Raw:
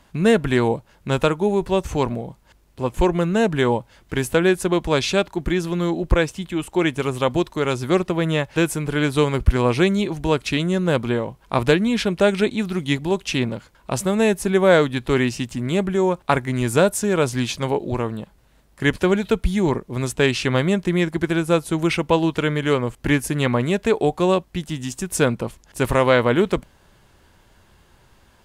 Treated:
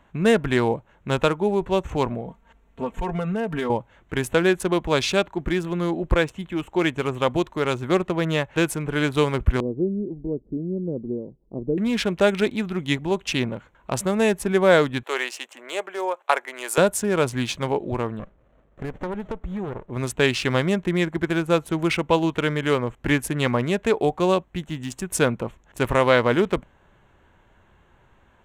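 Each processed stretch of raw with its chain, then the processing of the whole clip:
2.26–3.70 s: comb 4.4 ms, depth 78% + compression 12:1, threshold -19 dBFS
9.60–11.78 s: inverse Chebyshev low-pass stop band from 2.4 kHz, stop band 80 dB + peaking EQ 85 Hz -14.5 dB 1.3 oct
15.03–16.78 s: high-pass 480 Hz 24 dB/octave + treble shelf 6.9 kHz +5 dB + band-stop 3.7 kHz, Q 25
18.19–19.90 s: peaking EQ 590 Hz +10 dB 0.85 oct + compression 4:1, threshold -24 dBFS + sliding maximum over 33 samples
whole clip: local Wiener filter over 9 samples; bass shelf 470 Hz -3.5 dB

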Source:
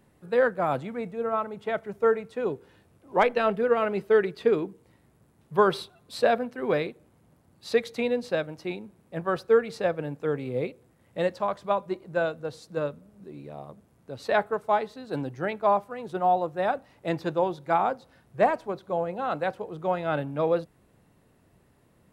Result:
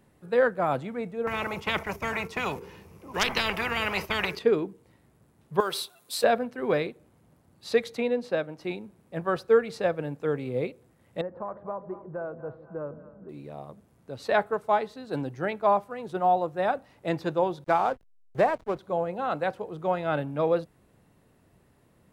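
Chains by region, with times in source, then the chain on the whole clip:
1.27–4.39 s: gate -45 dBFS, range -9 dB + rippled EQ curve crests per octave 0.8, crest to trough 8 dB + spectrum-flattening compressor 10:1
5.60–6.24 s: RIAA curve recording + compression 2.5:1, threshold -28 dBFS + short-mantissa float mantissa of 4-bit
7.97–8.61 s: high-pass 150 Hz + treble shelf 3.4 kHz -7 dB
11.21–13.29 s: compression 4:1, threshold -31 dBFS + low-pass 1.4 kHz 24 dB/octave + two-band feedback delay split 630 Hz, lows 153 ms, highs 241 ms, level -13.5 dB
17.64–18.79 s: peaking EQ 220 Hz -4 dB 0.87 oct + hysteresis with a dead band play -38 dBFS + three bands compressed up and down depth 70%
whole clip: none

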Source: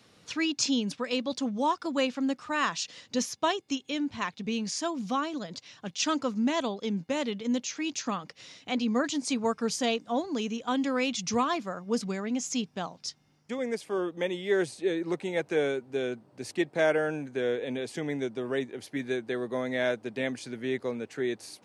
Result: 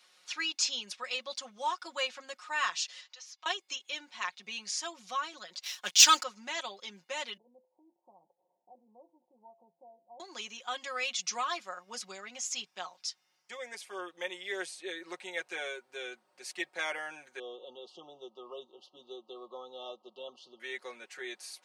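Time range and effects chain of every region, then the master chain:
3.01–3.46 s: Chebyshev band-pass 910–5700 Hz + compression 4:1, threshold -47 dBFS
5.63–6.23 s: treble shelf 2.8 kHz +10.5 dB + waveshaping leveller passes 2
7.37–10.20 s: compression 3:1, threshold -36 dBFS + steep low-pass 920 Hz 96 dB/octave + feedback comb 170 Hz, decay 0.47 s, mix 50%
17.39–20.60 s: brick-wall FIR band-stop 1.3–2.7 kHz + distance through air 250 m
whole clip: Bessel high-pass 1.2 kHz, order 2; comb 5.5 ms, depth 82%; trim -2.5 dB

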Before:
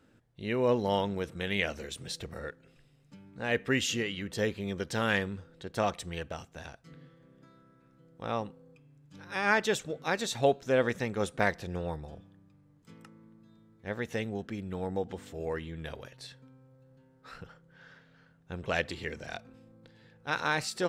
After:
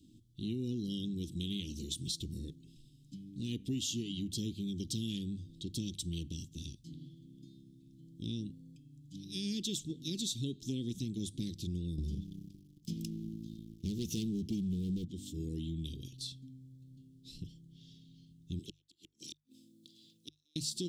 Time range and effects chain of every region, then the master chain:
11.98–15.05 s: rippled EQ curve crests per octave 0.81, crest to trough 7 dB + waveshaping leveller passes 3
18.59–20.56 s: high-pass 380 Hz + treble shelf 5.8 kHz +7 dB + inverted gate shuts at -24 dBFS, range -41 dB
whole clip: Chebyshev band-stop 330–3300 Hz, order 4; compression 4:1, threshold -40 dBFS; hum notches 50/100/150 Hz; trim +5.5 dB

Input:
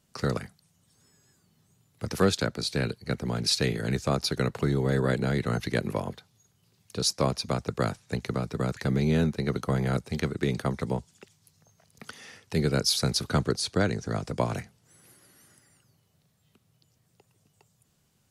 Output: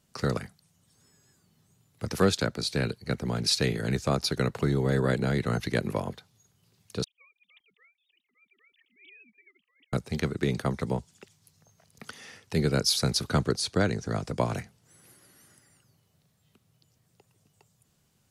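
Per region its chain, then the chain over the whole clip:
7.04–9.93 s: formants replaced by sine waves + inverse Chebyshev high-pass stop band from 1.6 kHz + slow attack 190 ms
whole clip: none

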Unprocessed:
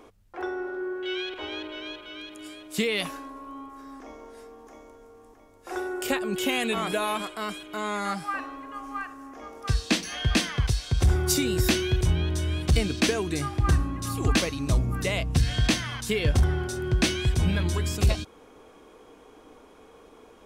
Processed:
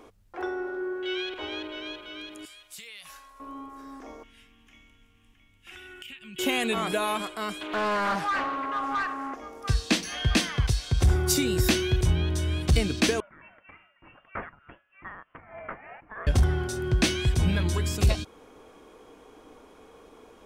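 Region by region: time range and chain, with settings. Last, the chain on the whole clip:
2.45–3.40 s: amplifier tone stack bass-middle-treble 10-0-10 + compression 12:1, threshold -39 dBFS
4.23–6.39 s: FFT filter 170 Hz 0 dB, 250 Hz -7 dB, 460 Hz -25 dB, 950 Hz -19 dB, 3 kHz +13 dB, 4.3 kHz -7 dB + compression, threshold -41 dBFS
7.61–9.35 s: overdrive pedal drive 21 dB, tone 1.7 kHz, clips at -18.5 dBFS + loudspeaker Doppler distortion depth 0.28 ms
13.20–16.27 s: ladder high-pass 1.8 kHz, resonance 25% + frequency inversion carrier 3.9 kHz + tremolo 3.3 Hz, depth 61%
whole clip: none

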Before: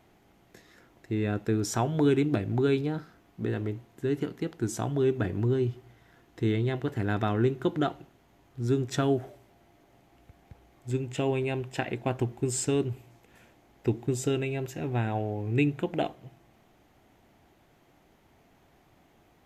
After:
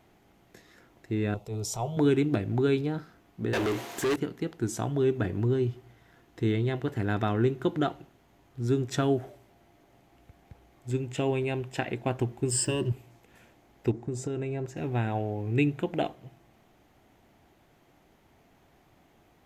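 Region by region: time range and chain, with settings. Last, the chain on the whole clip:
1.34–1.97 s: transient shaper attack -8 dB, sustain +1 dB + static phaser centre 670 Hz, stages 4
3.53–4.16 s: tone controls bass -6 dB, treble +9 dB + overdrive pedal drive 31 dB, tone 4.3 kHz, clips at -20 dBFS
12.51–12.92 s: rippled EQ curve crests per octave 1.3, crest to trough 15 dB + hysteresis with a dead band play -49.5 dBFS
13.91–14.77 s: low-pass 7.2 kHz + peaking EQ 3.1 kHz -11 dB 1.1 oct + compression 5:1, threshold -28 dBFS
whole clip: none

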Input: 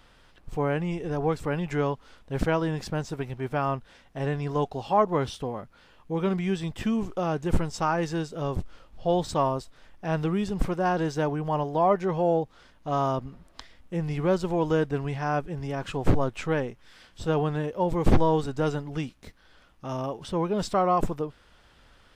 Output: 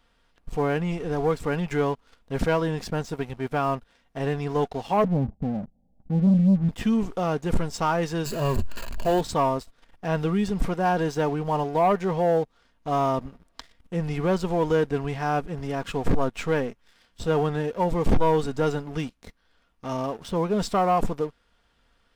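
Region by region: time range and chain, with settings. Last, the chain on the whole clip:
5.04–6.69 s: rippled Chebyshev low-pass 820 Hz, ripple 9 dB + bass shelf 330 Hz +11 dB + comb 1.1 ms, depth 47%
8.25–9.21 s: jump at every zero crossing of -33 dBFS + rippled EQ curve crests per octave 1.4, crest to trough 11 dB
whole clip: comb 4.3 ms, depth 32%; waveshaping leveller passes 2; trim -5.5 dB

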